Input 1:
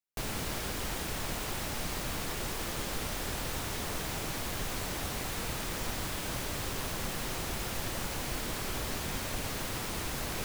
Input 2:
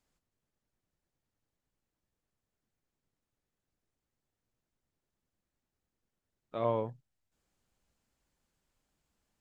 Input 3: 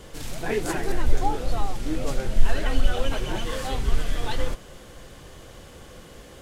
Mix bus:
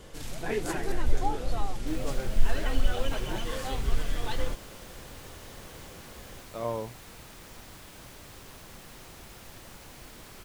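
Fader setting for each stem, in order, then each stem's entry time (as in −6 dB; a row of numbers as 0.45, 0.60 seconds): −12.0, −1.5, −4.5 decibels; 1.70, 0.00, 0.00 seconds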